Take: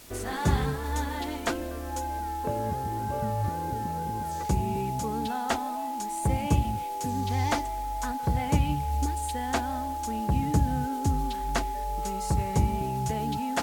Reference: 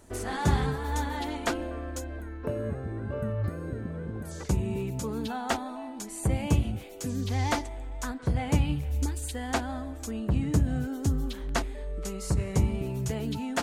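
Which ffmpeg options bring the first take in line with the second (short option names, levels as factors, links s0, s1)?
-af "bandreject=f=840:w=30,afwtdn=0.0032"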